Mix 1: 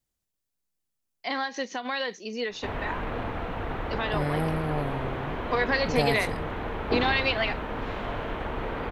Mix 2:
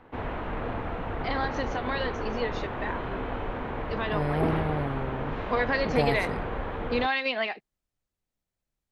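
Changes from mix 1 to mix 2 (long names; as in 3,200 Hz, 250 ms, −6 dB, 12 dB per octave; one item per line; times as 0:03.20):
background: entry −2.50 s
master: add high-shelf EQ 4,100 Hz −10.5 dB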